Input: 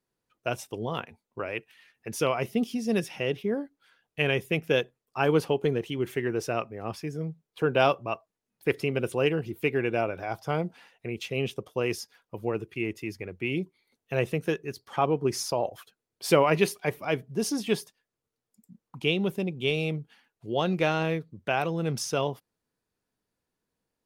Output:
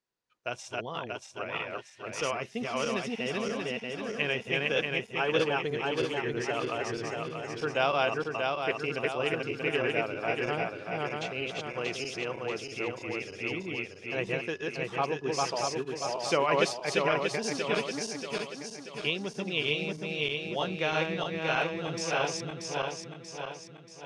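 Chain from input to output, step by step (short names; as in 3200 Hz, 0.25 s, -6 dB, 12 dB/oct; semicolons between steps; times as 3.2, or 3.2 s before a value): regenerating reverse delay 0.317 s, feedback 70%, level -0.5 dB; LPF 7400 Hz 24 dB/oct; low shelf 500 Hz -10 dB; gain -2 dB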